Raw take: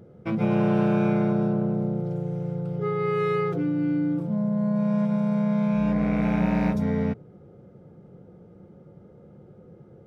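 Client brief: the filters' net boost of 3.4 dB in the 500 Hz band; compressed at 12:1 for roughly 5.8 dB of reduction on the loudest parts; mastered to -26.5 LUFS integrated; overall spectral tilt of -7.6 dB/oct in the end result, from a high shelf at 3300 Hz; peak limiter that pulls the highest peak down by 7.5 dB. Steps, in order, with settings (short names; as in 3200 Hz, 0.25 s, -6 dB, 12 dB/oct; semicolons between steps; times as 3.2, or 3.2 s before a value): bell 500 Hz +4.5 dB; high shelf 3300 Hz -5 dB; compressor 12:1, threshold -23 dBFS; gain +5 dB; limiter -19.5 dBFS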